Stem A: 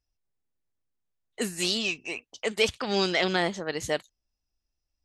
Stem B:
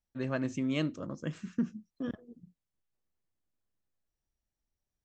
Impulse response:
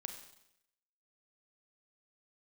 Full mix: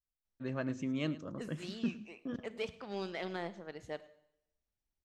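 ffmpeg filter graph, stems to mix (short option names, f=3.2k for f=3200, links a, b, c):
-filter_complex "[0:a]highshelf=f=2.5k:g=-10.5,aeval=exprs='0.211*(cos(1*acos(clip(val(0)/0.211,-1,1)))-cos(1*PI/2))+0.0075*(cos(7*acos(clip(val(0)/0.211,-1,1)))-cos(7*PI/2))':c=same,volume=-15.5dB,asplit=3[a][b][c];[b]volume=-3.5dB[d];[c]volume=-20dB[e];[1:a]adelay=250,volume=-4dB,asplit=2[f][g];[g]volume=-16.5dB[h];[2:a]atrim=start_sample=2205[i];[d][i]afir=irnorm=-1:irlink=0[j];[e][h]amix=inputs=2:normalize=0,aecho=0:1:108:1[k];[a][f][j][k]amix=inputs=4:normalize=0,highshelf=f=8.7k:g=-8"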